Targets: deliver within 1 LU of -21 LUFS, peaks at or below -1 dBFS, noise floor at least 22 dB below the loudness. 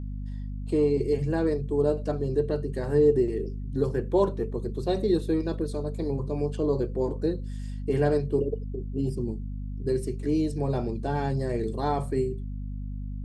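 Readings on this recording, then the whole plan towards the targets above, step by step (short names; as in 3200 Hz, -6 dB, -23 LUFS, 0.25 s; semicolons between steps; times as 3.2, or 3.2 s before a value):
hum 50 Hz; harmonics up to 250 Hz; hum level -31 dBFS; loudness -28.0 LUFS; peak -11.0 dBFS; loudness target -21.0 LUFS
-> de-hum 50 Hz, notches 5; gain +7 dB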